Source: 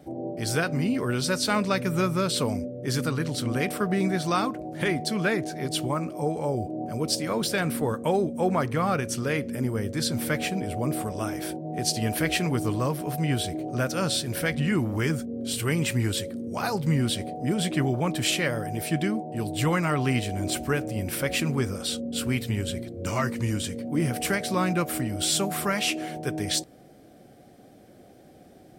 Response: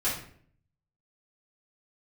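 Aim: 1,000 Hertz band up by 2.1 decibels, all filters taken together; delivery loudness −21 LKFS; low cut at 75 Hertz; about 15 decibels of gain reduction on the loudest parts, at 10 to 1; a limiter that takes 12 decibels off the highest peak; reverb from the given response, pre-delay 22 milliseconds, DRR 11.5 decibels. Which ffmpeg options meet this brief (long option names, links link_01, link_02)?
-filter_complex "[0:a]highpass=75,equalizer=frequency=1000:width_type=o:gain=3,acompressor=threshold=-35dB:ratio=10,alimiter=level_in=8.5dB:limit=-24dB:level=0:latency=1,volume=-8.5dB,asplit=2[link_01][link_02];[1:a]atrim=start_sample=2205,adelay=22[link_03];[link_02][link_03]afir=irnorm=-1:irlink=0,volume=-20.5dB[link_04];[link_01][link_04]amix=inputs=2:normalize=0,volume=20.5dB"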